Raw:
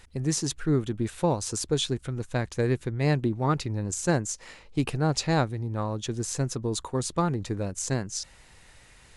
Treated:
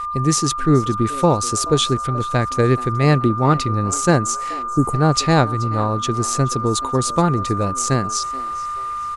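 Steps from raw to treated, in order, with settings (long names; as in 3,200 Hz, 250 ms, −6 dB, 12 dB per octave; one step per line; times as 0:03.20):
steady tone 1,200 Hz −32 dBFS
time-frequency box erased 0:04.63–0:04.94, 1,300–6,400 Hz
echo with shifted repeats 429 ms, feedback 36%, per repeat +130 Hz, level −20 dB
level +9 dB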